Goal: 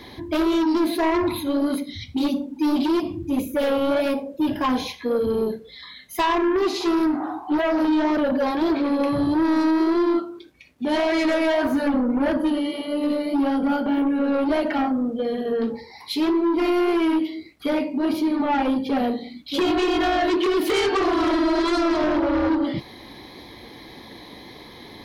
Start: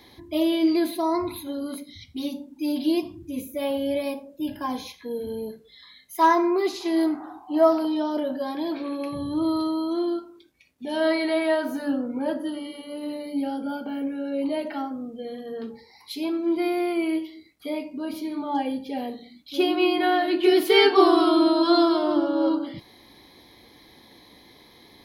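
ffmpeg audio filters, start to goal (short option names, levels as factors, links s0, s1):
-filter_complex "[0:a]highshelf=f=5100:g=-9,asplit=2[s0][s1];[s1]alimiter=limit=0.168:level=0:latency=1,volume=0.794[s2];[s0][s2]amix=inputs=2:normalize=0,acompressor=threshold=0.126:ratio=10,aeval=exprs='0.251*(cos(1*acos(clip(val(0)/0.251,-1,1)))-cos(1*PI/2))+0.0794*(cos(5*acos(clip(val(0)/0.251,-1,1)))-cos(5*PI/2))':c=same,flanger=delay=0.6:depth=8.8:regen=-64:speed=1.7:shape=sinusoidal,volume=1.26"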